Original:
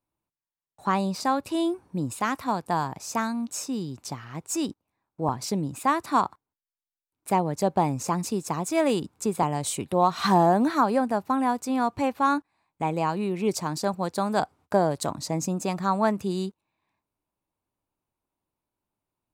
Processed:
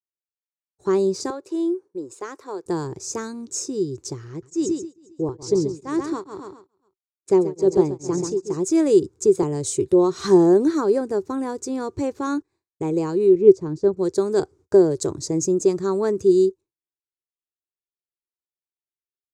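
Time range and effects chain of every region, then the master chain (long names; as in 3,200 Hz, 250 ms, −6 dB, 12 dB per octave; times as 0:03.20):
0:01.30–0:02.66: high-pass filter 520 Hz + high-shelf EQ 2,100 Hz −9.5 dB
0:04.29–0:08.57: low-pass filter 7,500 Hz + repeating echo 134 ms, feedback 46%, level −7 dB + tremolo along a rectified sine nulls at 2.3 Hz
0:13.35–0:13.97: low-pass filter 3,300 Hz 6 dB per octave + spectral tilt −2 dB per octave + expander for the loud parts, over −38 dBFS
whole clip: downward expander −46 dBFS; drawn EQ curve 110 Hz 0 dB, 240 Hz −12 dB, 380 Hz +11 dB, 680 Hz −17 dB, 1,600 Hz −12 dB, 2,800 Hz −17 dB, 6,700 Hz +1 dB, 13,000 Hz −19 dB; level +7 dB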